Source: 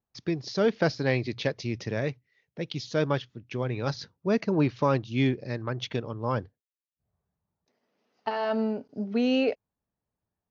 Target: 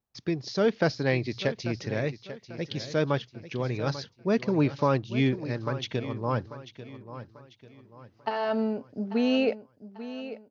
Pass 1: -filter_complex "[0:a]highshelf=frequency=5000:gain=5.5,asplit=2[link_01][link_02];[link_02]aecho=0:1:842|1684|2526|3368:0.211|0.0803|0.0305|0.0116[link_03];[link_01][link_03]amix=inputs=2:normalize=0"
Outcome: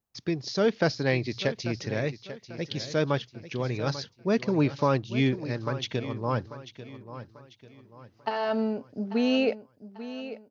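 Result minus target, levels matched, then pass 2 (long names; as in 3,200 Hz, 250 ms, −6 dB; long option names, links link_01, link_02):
8,000 Hz band +3.0 dB
-filter_complex "[0:a]asplit=2[link_01][link_02];[link_02]aecho=0:1:842|1684|2526|3368:0.211|0.0803|0.0305|0.0116[link_03];[link_01][link_03]amix=inputs=2:normalize=0"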